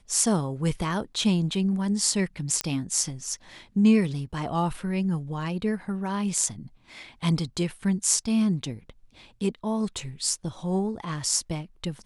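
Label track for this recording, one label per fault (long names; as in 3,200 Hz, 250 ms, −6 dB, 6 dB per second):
2.610000	2.610000	click −9 dBFS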